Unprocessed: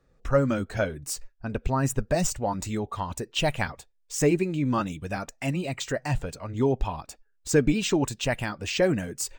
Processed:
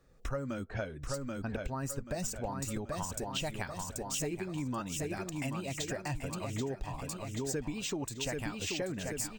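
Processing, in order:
0:00.66–0:01.14: low-pass that shuts in the quiet parts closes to 1,500 Hz, open at −21 dBFS
high-shelf EQ 5,800 Hz +7 dB
on a send: repeating echo 783 ms, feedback 44%, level −7 dB
on the sum: downward compressor 6 to 1, threshold −34 dBFS, peak gain reduction 17.5 dB

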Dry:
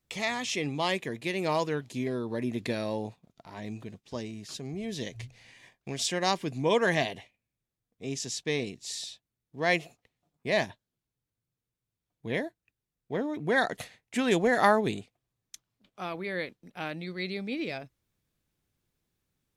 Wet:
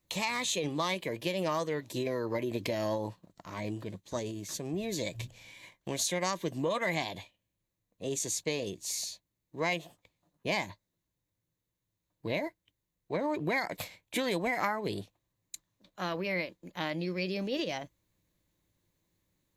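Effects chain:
EQ curve with evenly spaced ripples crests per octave 1.2, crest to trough 7 dB
downward compressor 6 to 1, threshold −30 dBFS, peak gain reduction 13 dB
formants moved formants +3 semitones
level +2 dB

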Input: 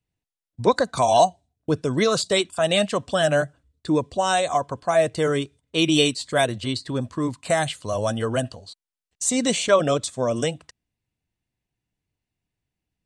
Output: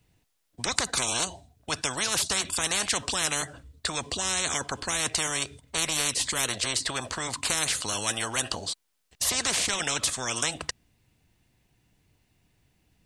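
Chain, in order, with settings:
every bin compressed towards the loudest bin 10 to 1
level +1.5 dB

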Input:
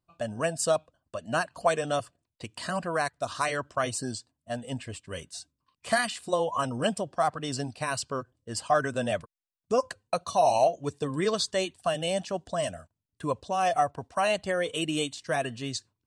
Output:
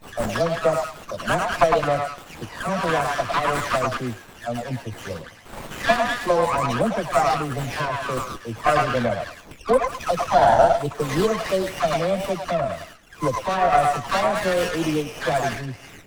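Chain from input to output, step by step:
every frequency bin delayed by itself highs early, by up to 396 ms
echo through a band-pass that steps 106 ms, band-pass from 980 Hz, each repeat 0.7 octaves, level 0 dB
windowed peak hold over 9 samples
level +7.5 dB

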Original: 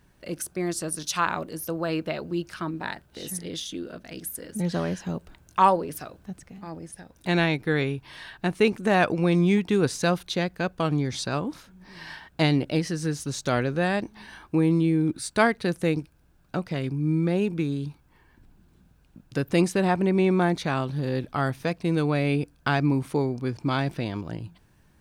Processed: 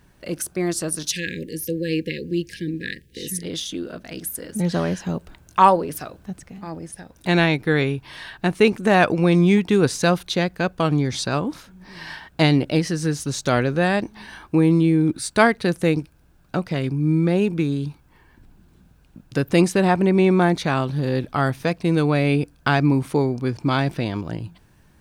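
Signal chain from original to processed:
0:01.11–0:03.43: linear-phase brick-wall band-stop 540–1,600 Hz
level +5 dB

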